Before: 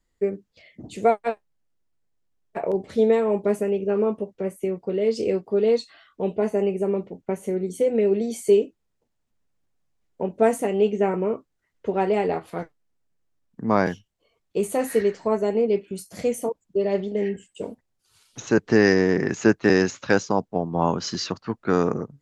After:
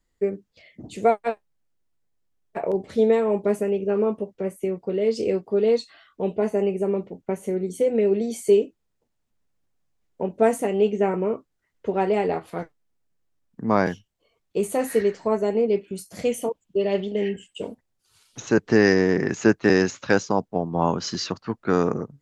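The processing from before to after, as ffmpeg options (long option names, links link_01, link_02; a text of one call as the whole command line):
ffmpeg -i in.wav -filter_complex "[0:a]asettb=1/sr,asplit=3[link_01][link_02][link_03];[link_01]atrim=end=16.254[link_04];[link_02]atrim=start=16.25:end=17.68,asetpts=PTS-STARTPTS,afade=type=in:duration=0.004:curve=qsin,afade=type=out:start_time=1.426:duration=0.004:curve=qsin,equalizer=frequency=3000:width_type=o:width=0.54:gain=9.5[link_05];[link_03]atrim=start=17.676[link_06];[link_04][link_05]acrossfade=duration=0.004:curve1=hsin:curve2=qsin[link_07];[link_07][link_06]acrossfade=duration=0.004:curve1=qsin:curve2=hsin" out.wav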